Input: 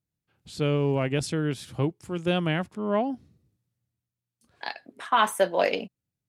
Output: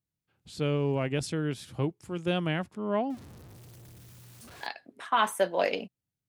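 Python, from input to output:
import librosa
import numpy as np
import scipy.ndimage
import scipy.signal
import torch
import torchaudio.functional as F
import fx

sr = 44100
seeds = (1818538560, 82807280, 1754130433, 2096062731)

y = fx.zero_step(x, sr, step_db=-40.5, at=(3.1, 4.67))
y = F.gain(torch.from_numpy(y), -3.5).numpy()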